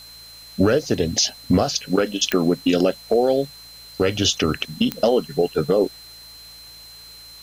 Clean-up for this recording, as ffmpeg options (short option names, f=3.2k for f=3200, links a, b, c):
-af "adeclick=t=4,bandreject=f=56.4:t=h:w=4,bandreject=f=112.8:t=h:w=4,bandreject=f=169.2:t=h:w=4,bandreject=f=4.1k:w=30,afftdn=nr=23:nf=-43"